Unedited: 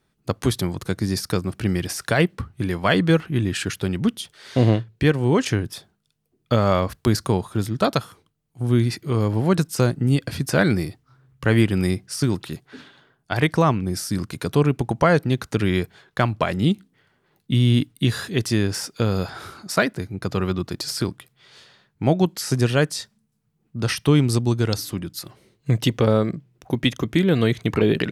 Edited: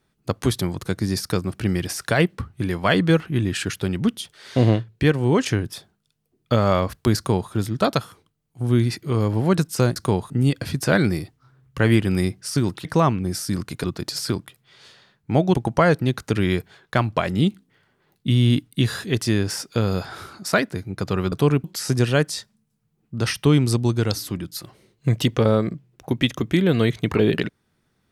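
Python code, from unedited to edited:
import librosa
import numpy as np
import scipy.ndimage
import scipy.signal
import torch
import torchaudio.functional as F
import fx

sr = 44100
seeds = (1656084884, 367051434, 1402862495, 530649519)

y = fx.edit(x, sr, fx.duplicate(start_s=7.17, length_s=0.34, to_s=9.96),
    fx.cut(start_s=12.51, length_s=0.96),
    fx.swap(start_s=14.46, length_s=0.32, other_s=20.56, other_length_s=1.7), tone=tone)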